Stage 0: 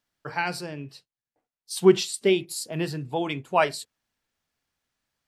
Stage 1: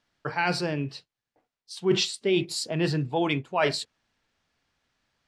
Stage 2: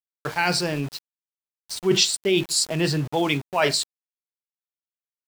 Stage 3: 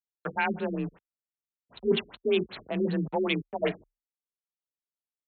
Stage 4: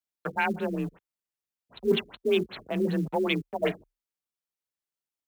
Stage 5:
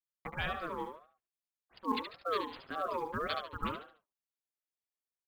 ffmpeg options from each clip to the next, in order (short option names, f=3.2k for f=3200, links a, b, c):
-af "lowpass=5.4k,areverse,acompressor=threshold=-29dB:ratio=6,areverse,volume=7.5dB"
-af "equalizer=f=8.5k:t=o:w=1.7:g=10,aeval=exprs='val(0)*gte(abs(val(0)),0.0158)':c=same,volume=2.5dB"
-af "adynamicsmooth=sensitivity=3:basefreq=1.4k,afreqshift=32,afftfilt=real='re*lt(b*sr/1024,420*pow(4400/420,0.5+0.5*sin(2*PI*5.2*pts/sr)))':imag='im*lt(b*sr/1024,420*pow(4400/420,0.5+0.5*sin(2*PI*5.2*pts/sr)))':win_size=1024:overlap=0.75,volume=-4dB"
-af "acrusher=bits=8:mode=log:mix=0:aa=0.000001,volume=1dB"
-filter_complex "[0:a]asplit=2[a][b];[b]aecho=0:1:72|144|216|288:0.473|0.161|0.0547|0.0186[c];[a][c]amix=inputs=2:normalize=0,aeval=exprs='val(0)*sin(2*PI*810*n/s+810*0.2/1.8*sin(2*PI*1.8*n/s))':c=same,volume=-7dB"